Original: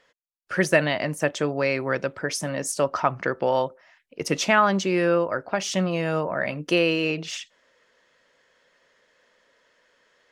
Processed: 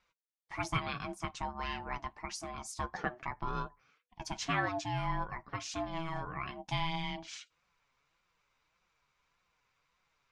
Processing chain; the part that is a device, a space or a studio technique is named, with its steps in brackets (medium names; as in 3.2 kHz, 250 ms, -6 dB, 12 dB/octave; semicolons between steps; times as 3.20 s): peaking EQ 5.8 kHz +2.5 dB; alien voice (ring modulator 490 Hz; flange 1.7 Hz, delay 5.3 ms, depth 2.4 ms, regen +43%); low-pass 8.7 kHz 12 dB/octave; trim -7 dB